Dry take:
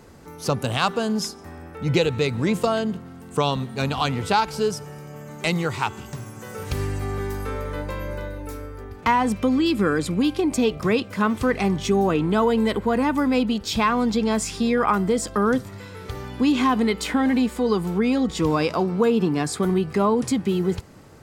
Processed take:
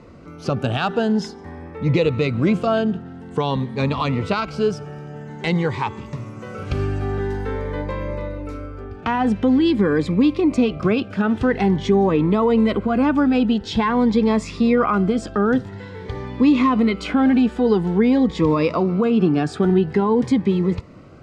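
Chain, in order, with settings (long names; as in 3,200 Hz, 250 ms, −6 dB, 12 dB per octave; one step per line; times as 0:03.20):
Bessel low-pass filter 2,400 Hz, order 2
low-shelf EQ 120 Hz −4 dB
boost into a limiter +12 dB
phaser whose notches keep moving one way rising 0.48 Hz
level −6 dB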